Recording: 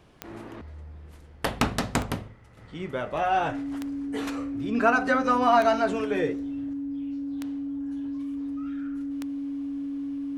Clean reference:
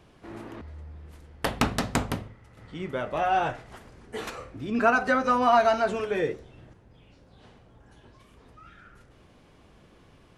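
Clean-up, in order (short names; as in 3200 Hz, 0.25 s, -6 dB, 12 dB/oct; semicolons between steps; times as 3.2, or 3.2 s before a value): de-click; notch 280 Hz, Q 30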